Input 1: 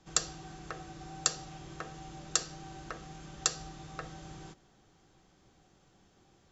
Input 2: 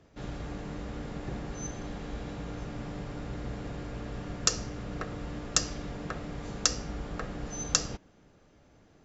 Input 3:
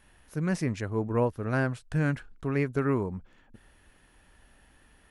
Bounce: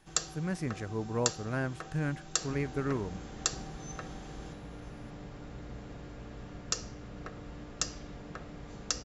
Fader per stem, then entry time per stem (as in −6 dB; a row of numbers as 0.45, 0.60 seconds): −1.5, −7.0, −6.0 decibels; 0.00, 2.25, 0.00 seconds